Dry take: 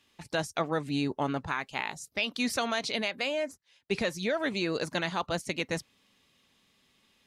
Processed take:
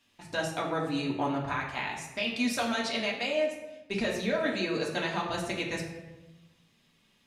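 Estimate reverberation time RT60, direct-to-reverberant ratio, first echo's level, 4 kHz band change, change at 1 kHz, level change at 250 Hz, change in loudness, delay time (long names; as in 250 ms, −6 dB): 1.1 s, −3.0 dB, no echo audible, −0.5 dB, +0.5 dB, +1.0 dB, +0.5 dB, no echo audible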